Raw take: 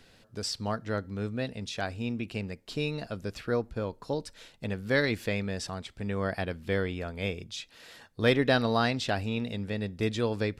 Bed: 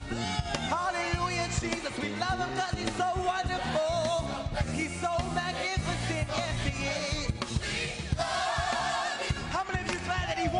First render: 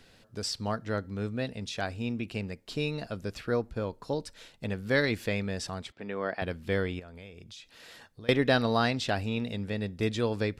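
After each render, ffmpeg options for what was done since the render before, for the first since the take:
-filter_complex "[0:a]asettb=1/sr,asplit=3[s0][s1][s2];[s0]atrim=end=5.924[s3];[s1]atrim=start=5.92:end=6.42,asetpts=PTS-STARTPTS,afade=t=in:d=0.004:c=qsin,afade=t=out:st=0.496:d=0.004:c=qsin,highpass=270,lowpass=3500[s4];[s2]atrim=start=6.416[s5];[s3][s4]acrossfade=d=0.004:c1=hsin:c2=qsin[s6];[s6][s5]acrossfade=d=0.004:c1=qsin:c2=hsin,asettb=1/sr,asplit=3[s7][s8][s9];[s7]atrim=end=6.994[s10];[s8]atrim=start=6.99:end=8.29,asetpts=PTS-STARTPTS,afade=t=in:d=0.004:c=qsin,afade=t=out:st=1.296:d=0.004:c=qsin,acompressor=threshold=0.00631:ratio=6:attack=3.2:release=140:knee=1:detection=peak[s11];[s9]atrim=start=8.286[s12];[s10][s11]acrossfade=d=0.004:c1=hsin:c2=qsin[s13];[s13][s12]acrossfade=d=0.004:c1=qsin:c2=hsin"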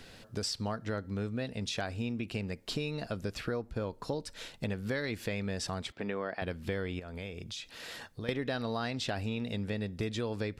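-filter_complex "[0:a]asplit=2[s0][s1];[s1]alimiter=limit=0.0794:level=0:latency=1:release=38,volume=1[s2];[s0][s2]amix=inputs=2:normalize=0,acompressor=threshold=0.0224:ratio=4"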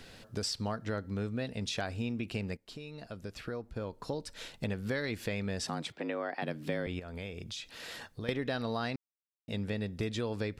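-filter_complex "[0:a]asettb=1/sr,asplit=3[s0][s1][s2];[s0]atrim=end=5.664[s3];[s1]atrim=start=5.66:end=6.87,asetpts=PTS-STARTPTS,afade=t=in:d=0.004:c=qsin,afade=t=out:st=1.206:d=0.004:c=qsin,afreqshift=66[s4];[s2]atrim=start=6.866[s5];[s3][s4]acrossfade=d=0.004:c1=hsin:c2=qsin[s6];[s6][s5]acrossfade=d=0.004:c1=qsin:c2=hsin,asplit=4[s7][s8][s9][s10];[s7]atrim=end=2.57,asetpts=PTS-STARTPTS,afade=t=out:st=2.566:d=0.004:c=hsin:silence=0.199526[s11];[s8]atrim=start=2.57:end=8.96,asetpts=PTS-STARTPTS,afade=t=in:d=1.95:silence=0.199526,afade=t=out:st=6.386:d=0.004:c=hsin[s12];[s9]atrim=start=8.96:end=9.48,asetpts=PTS-STARTPTS,volume=0[s13];[s10]atrim=start=9.48,asetpts=PTS-STARTPTS,afade=t=in:d=0.004:c=hsin[s14];[s11][s12][s13][s14]concat=n=4:v=0:a=1"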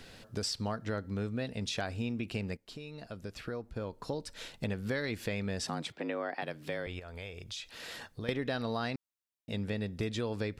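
-filter_complex "[0:a]asettb=1/sr,asplit=3[s0][s1][s2];[s0]atrim=end=6.414[s3];[s1]atrim=start=6.41:end=7.73,asetpts=PTS-STARTPTS,afade=t=in:d=0.004:c=qsin,afade=t=out:st=1.316:d=0.004:c=qsin,equalizer=f=220:t=o:w=1.3:g=-9.5[s4];[s2]atrim=start=7.726[s5];[s3][s4]acrossfade=d=0.004:c1=hsin:c2=qsin[s6];[s6][s5]acrossfade=d=0.004:c1=qsin:c2=hsin"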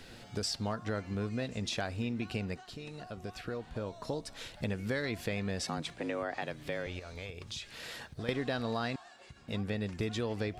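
-filter_complex "[1:a]volume=0.0708[s0];[0:a][s0]amix=inputs=2:normalize=0"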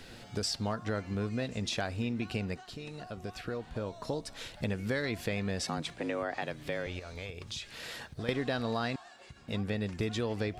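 -af "volume=1.19"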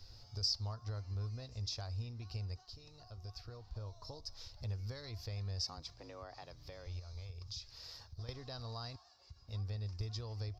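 -af "firequalizer=gain_entry='entry(100,0);entry(170,-23);entry(420,-18);entry(1100,-11);entry(1600,-22);entry(3200,-18);entry(5000,3);entry(8800,-29);entry(13000,-10)':delay=0.05:min_phase=1"

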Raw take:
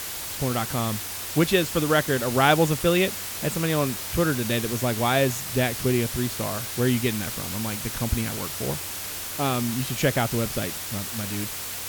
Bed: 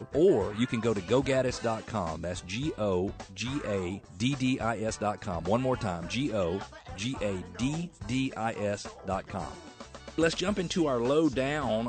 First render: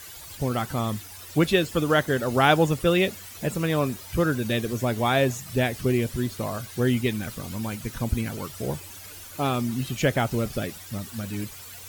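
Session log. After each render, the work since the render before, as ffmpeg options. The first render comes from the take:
-af "afftdn=nr=13:nf=-34"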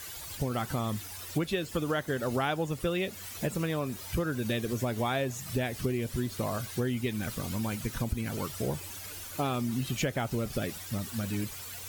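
-af "acompressor=threshold=0.0447:ratio=6"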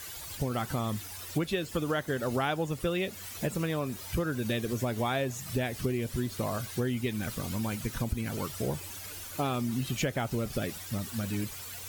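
-af anull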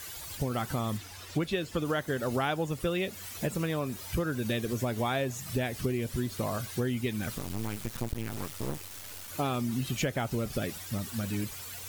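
-filter_complex "[0:a]asettb=1/sr,asplit=3[s0][s1][s2];[s0]atrim=end=0.974[s3];[s1]atrim=start=0.97:end=1.85,asetpts=PTS-STARTPTS,afade=t=in:d=0.004:c=qsin,afade=t=out:st=0.876:d=0.004:c=qsin,acrossover=split=6800[s4][s5];[s5]acompressor=threshold=0.00251:ratio=4:attack=1:release=60[s6];[s4][s6]amix=inputs=2:normalize=0[s7];[s2]atrim=start=1.846[s8];[s3][s7]acrossfade=d=0.004:c1=hsin:c2=qsin[s9];[s9][s8]acrossfade=d=0.004:c1=qsin:c2=hsin,asettb=1/sr,asplit=3[s10][s11][s12];[s10]atrim=end=7.384[s13];[s11]atrim=start=7.38:end=9.28,asetpts=PTS-STARTPTS,afade=t=in:d=0.004:c=qsin,afade=t=out:st=1.896:d=0.004:c=qsin,acrusher=bits=4:dc=4:mix=0:aa=0.000001[s14];[s12]atrim=start=9.276[s15];[s13][s14]acrossfade=d=0.004:c1=hsin:c2=qsin[s16];[s16][s15]acrossfade=d=0.004:c1=qsin:c2=hsin"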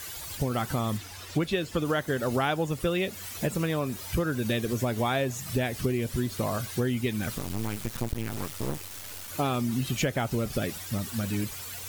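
-af "volume=1.41"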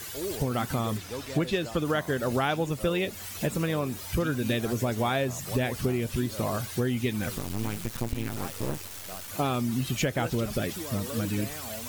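-filter_complex "[1:a]volume=0.251[s0];[0:a][s0]amix=inputs=2:normalize=0"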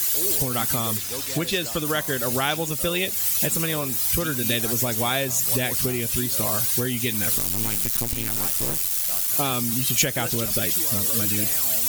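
-af "aeval=exprs='val(0)*gte(abs(val(0)),0.00531)':c=same,crystalizer=i=5:c=0"

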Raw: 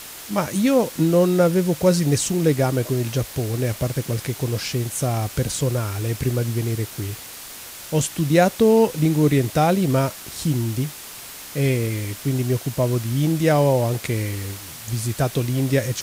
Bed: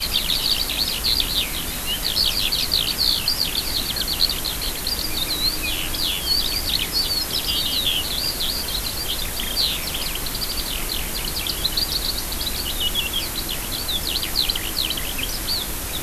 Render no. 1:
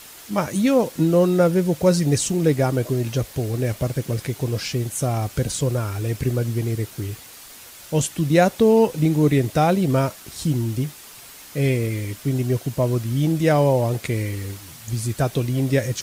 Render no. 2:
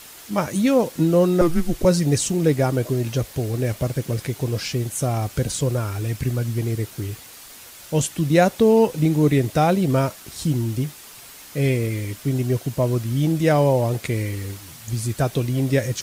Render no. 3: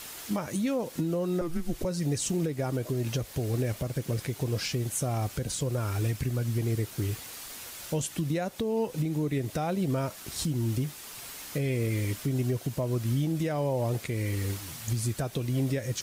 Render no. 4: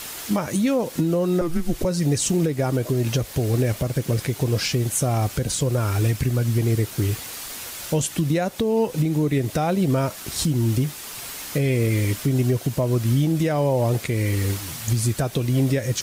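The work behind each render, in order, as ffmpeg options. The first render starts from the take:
-af "afftdn=nr=6:nf=-38"
-filter_complex "[0:a]asettb=1/sr,asplit=3[s0][s1][s2];[s0]atrim=end=1.414[s3];[s1]atrim=start=1.41:end=1.85,asetpts=PTS-STARTPTS,afade=t=in:d=0.004:c=qsin,afade=t=out:st=0.436:d=0.004:c=qsin,afreqshift=-170[s4];[s2]atrim=start=1.846[s5];[s3][s4]acrossfade=d=0.004:c1=hsin:c2=qsin[s6];[s6][s5]acrossfade=d=0.004:c1=qsin:c2=hsin,asettb=1/sr,asplit=3[s7][s8][s9];[s7]atrim=end=6.044[s10];[s8]atrim=start=6.04:end=6.58,asetpts=PTS-STARTPTS,afade=t=in:d=0.004:c=qsin,afade=t=out:st=0.536:d=0.004:c=qsin,equalizer=f=430:t=o:w=0.95:g=-6.5[s11];[s9]atrim=start=6.576[s12];[s10][s11]acrossfade=d=0.004:c1=hsin:c2=qsin[s13];[s13][s12]acrossfade=d=0.004:c1=qsin:c2=hsin"
-af "acompressor=threshold=0.0891:ratio=5,alimiter=limit=0.0944:level=0:latency=1:release=475"
-af "volume=2.51"

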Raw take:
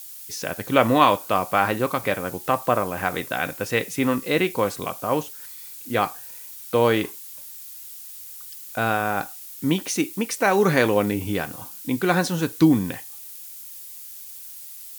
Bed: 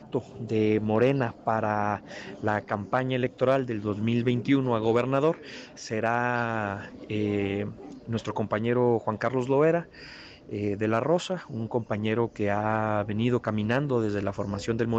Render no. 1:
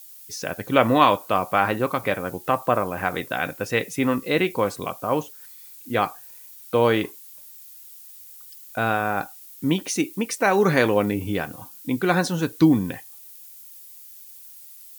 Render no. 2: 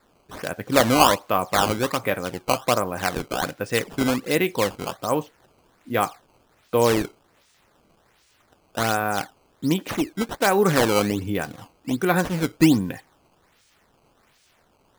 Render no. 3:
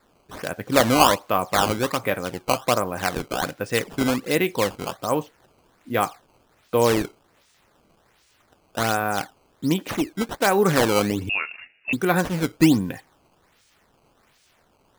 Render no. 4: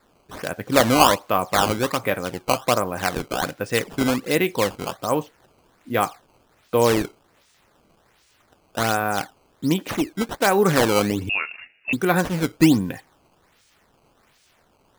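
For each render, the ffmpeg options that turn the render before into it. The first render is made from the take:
-af "afftdn=nr=7:nf=-40"
-af "adynamicsmooth=sensitivity=3.5:basefreq=5600,acrusher=samples=14:mix=1:aa=0.000001:lfo=1:lforange=22.4:lforate=1.3"
-filter_complex "[0:a]asettb=1/sr,asplit=3[s0][s1][s2];[s0]atrim=end=11.294[s3];[s1]atrim=start=11.29:end=11.93,asetpts=PTS-STARTPTS,afade=t=in:d=0.004:c=qsin,afade=t=out:st=0.636:d=0.004:c=qsin,lowpass=f=2500:t=q:w=0.5098,lowpass=f=2500:t=q:w=0.6013,lowpass=f=2500:t=q:w=0.9,lowpass=f=2500:t=q:w=2.563,afreqshift=-2900[s4];[s2]atrim=start=11.926[s5];[s3][s4]acrossfade=d=0.004:c1=hsin:c2=qsin[s6];[s6][s5]acrossfade=d=0.004:c1=qsin:c2=hsin"
-af "volume=1.12"

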